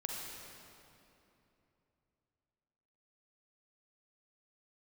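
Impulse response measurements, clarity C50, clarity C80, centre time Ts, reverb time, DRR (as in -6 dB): -0.5 dB, 1.0 dB, 133 ms, 3.0 s, -1.5 dB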